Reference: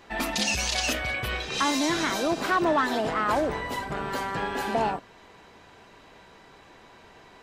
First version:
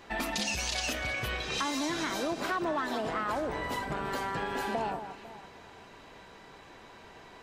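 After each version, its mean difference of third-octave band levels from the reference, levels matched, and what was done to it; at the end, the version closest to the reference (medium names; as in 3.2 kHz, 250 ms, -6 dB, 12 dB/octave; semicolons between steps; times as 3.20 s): 3.5 dB: on a send: echo whose repeats swap between lows and highs 166 ms, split 1.8 kHz, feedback 56%, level -13.5 dB; on the sum: compression 3:1, threshold -31 dBFS, peak gain reduction 9 dB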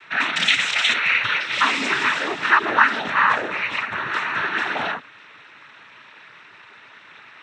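8.0 dB: high-order bell 1.9 kHz +16 dB; noise-vocoded speech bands 12; trim -3.5 dB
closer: first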